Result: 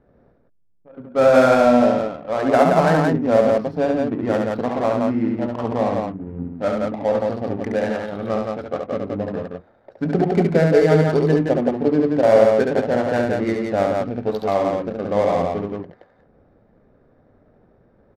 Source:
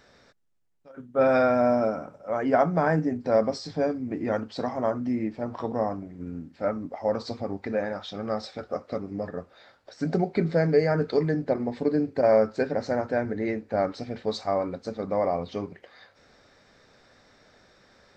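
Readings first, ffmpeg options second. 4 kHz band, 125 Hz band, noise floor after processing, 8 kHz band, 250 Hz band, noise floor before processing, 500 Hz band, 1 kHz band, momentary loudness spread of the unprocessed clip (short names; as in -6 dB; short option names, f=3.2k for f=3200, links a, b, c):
+5.5 dB, +8.0 dB, -58 dBFS, n/a, +8.0 dB, -59 dBFS, +8.0 dB, +7.5 dB, 12 LU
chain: -af "adynamicsmooth=sensitivity=5:basefreq=510,aecho=1:1:69.97|172:0.631|0.708,volume=5dB"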